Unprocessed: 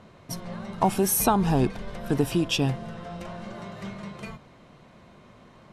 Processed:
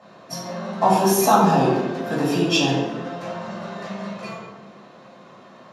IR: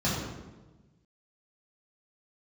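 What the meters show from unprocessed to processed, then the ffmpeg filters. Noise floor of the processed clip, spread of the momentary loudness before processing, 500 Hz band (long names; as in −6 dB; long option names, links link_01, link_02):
−47 dBFS, 17 LU, +7.5 dB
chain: -filter_complex "[0:a]highpass=520[link_01];[1:a]atrim=start_sample=2205[link_02];[link_01][link_02]afir=irnorm=-1:irlink=0,volume=-2.5dB"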